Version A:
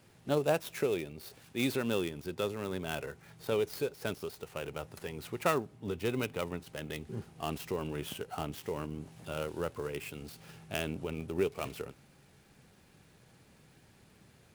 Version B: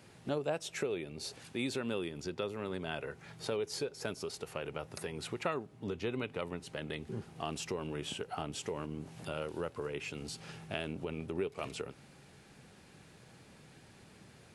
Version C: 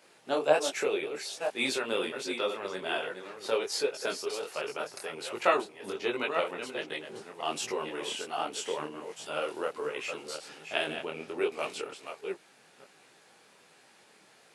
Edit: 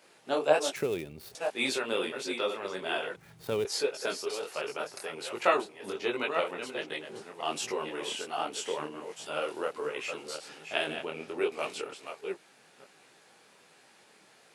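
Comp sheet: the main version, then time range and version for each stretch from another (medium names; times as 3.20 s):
C
0.76–1.35 s: from A
3.16–3.65 s: from A
not used: B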